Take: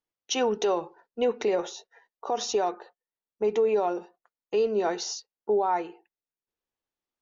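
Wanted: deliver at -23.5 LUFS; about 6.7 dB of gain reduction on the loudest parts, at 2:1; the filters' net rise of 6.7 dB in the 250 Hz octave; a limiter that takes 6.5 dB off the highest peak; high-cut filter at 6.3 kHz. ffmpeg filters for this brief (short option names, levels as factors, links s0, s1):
-af "lowpass=6300,equalizer=f=250:t=o:g=9,acompressor=threshold=0.0316:ratio=2,volume=3.55,alimiter=limit=0.211:level=0:latency=1"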